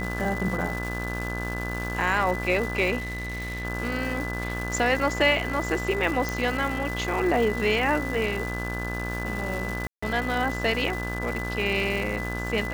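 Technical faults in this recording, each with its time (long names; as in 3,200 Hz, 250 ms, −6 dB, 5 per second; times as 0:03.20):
mains buzz 60 Hz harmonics 30 −32 dBFS
surface crackle 500 per second −31 dBFS
whistle 2,000 Hz −33 dBFS
0:02.98–0:03.65: clipping −28.5 dBFS
0:06.29: click
0:09.87–0:10.03: drop-out 155 ms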